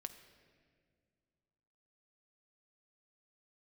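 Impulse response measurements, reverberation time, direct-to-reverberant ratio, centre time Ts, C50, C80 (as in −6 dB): 2.0 s, 7.0 dB, 16 ms, 10.5 dB, 12.0 dB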